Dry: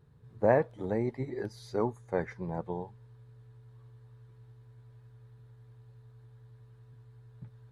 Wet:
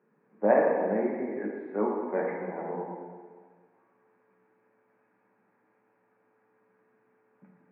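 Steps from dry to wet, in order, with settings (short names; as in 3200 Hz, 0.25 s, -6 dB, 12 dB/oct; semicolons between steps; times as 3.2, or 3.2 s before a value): Chebyshev band-pass 190–2500 Hz, order 5; plate-style reverb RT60 1.7 s, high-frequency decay 0.85×, pre-delay 0 ms, DRR -2 dB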